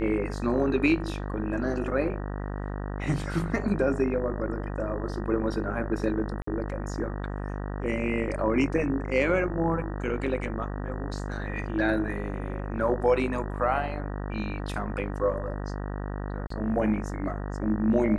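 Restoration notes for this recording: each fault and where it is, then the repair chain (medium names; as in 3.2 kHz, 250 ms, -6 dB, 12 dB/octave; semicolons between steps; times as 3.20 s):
buzz 50 Hz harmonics 38 -33 dBFS
6.42–6.47 s: dropout 54 ms
16.47–16.50 s: dropout 34 ms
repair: de-hum 50 Hz, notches 38; interpolate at 6.42 s, 54 ms; interpolate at 16.47 s, 34 ms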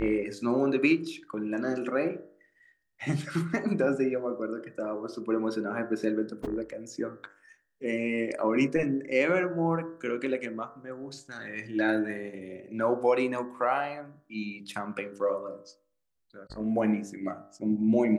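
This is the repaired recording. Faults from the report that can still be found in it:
16.47–16.50 s: dropout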